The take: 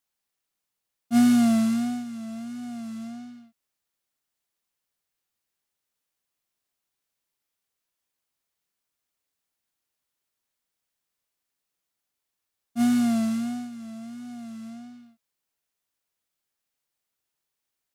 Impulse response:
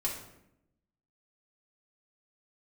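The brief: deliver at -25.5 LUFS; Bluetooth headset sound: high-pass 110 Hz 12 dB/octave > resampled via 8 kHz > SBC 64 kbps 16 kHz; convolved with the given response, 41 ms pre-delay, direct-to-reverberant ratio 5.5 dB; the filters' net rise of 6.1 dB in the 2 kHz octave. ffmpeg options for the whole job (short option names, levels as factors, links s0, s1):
-filter_complex "[0:a]equalizer=f=2000:t=o:g=8,asplit=2[s0][s1];[1:a]atrim=start_sample=2205,adelay=41[s2];[s1][s2]afir=irnorm=-1:irlink=0,volume=0.335[s3];[s0][s3]amix=inputs=2:normalize=0,highpass=110,aresample=8000,aresample=44100,volume=0.596" -ar 16000 -c:a sbc -b:a 64k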